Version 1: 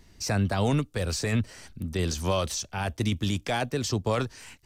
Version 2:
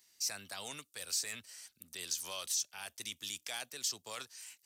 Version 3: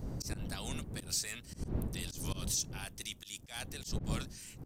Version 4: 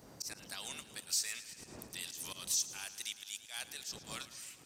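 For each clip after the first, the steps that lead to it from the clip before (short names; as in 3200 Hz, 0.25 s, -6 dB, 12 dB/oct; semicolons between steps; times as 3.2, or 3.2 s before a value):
differentiator
wind noise 160 Hz -38 dBFS; auto swell 0.127 s
HPF 1400 Hz 6 dB/oct; warbling echo 0.11 s, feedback 73%, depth 53 cents, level -15.5 dB; gain +1.5 dB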